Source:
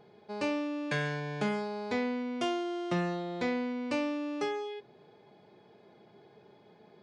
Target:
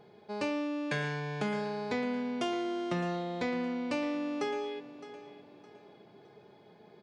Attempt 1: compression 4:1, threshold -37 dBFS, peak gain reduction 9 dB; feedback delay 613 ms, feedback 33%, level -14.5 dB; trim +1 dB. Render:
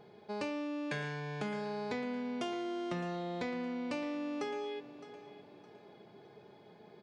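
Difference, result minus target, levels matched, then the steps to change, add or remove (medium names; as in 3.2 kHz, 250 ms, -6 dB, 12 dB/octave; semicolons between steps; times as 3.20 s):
compression: peak gain reduction +5 dB
change: compression 4:1, threshold -30 dBFS, peak gain reduction 4 dB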